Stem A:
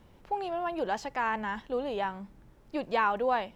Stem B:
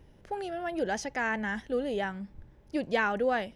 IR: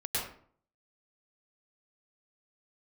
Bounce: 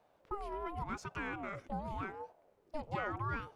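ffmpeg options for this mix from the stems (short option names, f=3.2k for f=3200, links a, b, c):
-filter_complex "[0:a]volume=-10.5dB,asplit=2[a][b];[1:a]acompressor=threshold=-37dB:ratio=6,aeval=exprs='0.0531*(cos(1*acos(clip(val(0)/0.0531,-1,1)))-cos(1*PI/2))+0.00335*(cos(4*acos(clip(val(0)/0.0531,-1,1)))-cos(4*PI/2))':c=same,volume=-4dB[c];[b]apad=whole_len=156917[d];[c][d]sidechaingate=range=-33dB:threshold=-58dB:ratio=16:detection=peak[e];[a][e]amix=inputs=2:normalize=0,aeval=exprs='val(0)*sin(2*PI*490*n/s+490*0.4/0.88*sin(2*PI*0.88*n/s))':c=same"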